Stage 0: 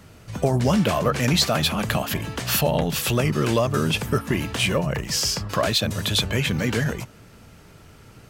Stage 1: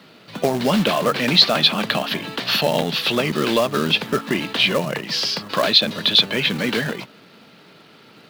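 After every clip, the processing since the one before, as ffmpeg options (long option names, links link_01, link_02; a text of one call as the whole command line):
ffmpeg -i in.wav -filter_complex "[0:a]highpass=frequency=180:width=0.5412,highpass=frequency=180:width=1.3066,highshelf=frequency=5600:width_type=q:width=3:gain=-12,acrossover=split=1800[link_01][link_02];[link_01]acrusher=bits=3:mode=log:mix=0:aa=0.000001[link_03];[link_03][link_02]amix=inputs=2:normalize=0,volume=2.5dB" out.wav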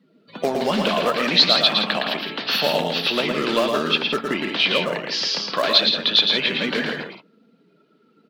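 ffmpeg -i in.wav -filter_complex "[0:a]afftdn=noise_reduction=23:noise_floor=-40,equalizer=frequency=110:width=1.4:gain=-14.5,asplit=2[link_01][link_02];[link_02]aecho=0:1:113|166:0.596|0.355[link_03];[link_01][link_03]amix=inputs=2:normalize=0,volume=-2dB" out.wav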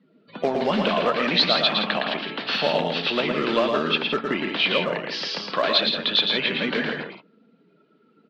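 ffmpeg -i in.wav -af "lowpass=3600,volume=-1dB" out.wav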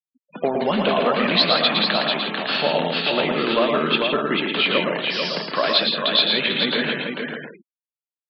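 ffmpeg -i in.wav -af "aecho=1:1:443:0.562,afftfilt=real='re*gte(hypot(re,im),0.02)':imag='im*gte(hypot(re,im),0.02)':win_size=1024:overlap=0.75,volume=1.5dB" out.wav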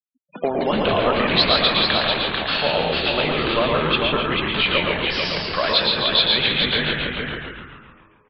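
ffmpeg -i in.wav -filter_complex "[0:a]afftfilt=real='re*gte(hypot(re,im),0.01)':imag='im*gte(hypot(re,im),0.01)':win_size=1024:overlap=0.75,asubboost=boost=11:cutoff=80,asplit=9[link_01][link_02][link_03][link_04][link_05][link_06][link_07][link_08][link_09];[link_02]adelay=138,afreqshift=-95,volume=-6dB[link_10];[link_03]adelay=276,afreqshift=-190,volume=-10.3dB[link_11];[link_04]adelay=414,afreqshift=-285,volume=-14.6dB[link_12];[link_05]adelay=552,afreqshift=-380,volume=-18.9dB[link_13];[link_06]adelay=690,afreqshift=-475,volume=-23.2dB[link_14];[link_07]adelay=828,afreqshift=-570,volume=-27.5dB[link_15];[link_08]adelay=966,afreqshift=-665,volume=-31.8dB[link_16];[link_09]adelay=1104,afreqshift=-760,volume=-36.1dB[link_17];[link_01][link_10][link_11][link_12][link_13][link_14][link_15][link_16][link_17]amix=inputs=9:normalize=0" out.wav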